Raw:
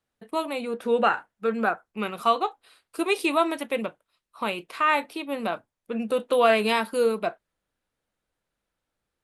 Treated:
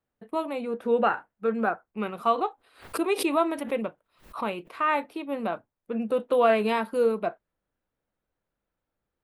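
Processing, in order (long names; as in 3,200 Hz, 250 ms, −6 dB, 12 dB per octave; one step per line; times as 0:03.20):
parametric band 6,900 Hz −12 dB 2.9 octaves
0:02.28–0:04.74: background raised ahead of every attack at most 140 dB per second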